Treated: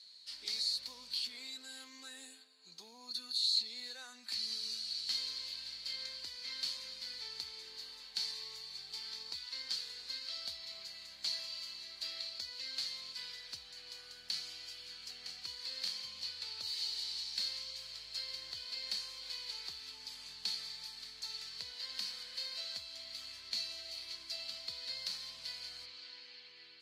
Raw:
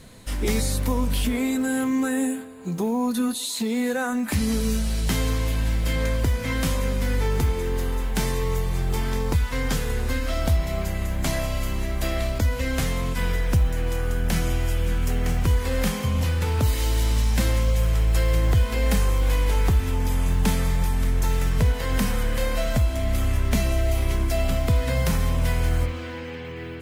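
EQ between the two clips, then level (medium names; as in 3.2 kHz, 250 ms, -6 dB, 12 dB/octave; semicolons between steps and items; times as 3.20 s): band-pass filter 4.4 kHz, Q 15; +9.0 dB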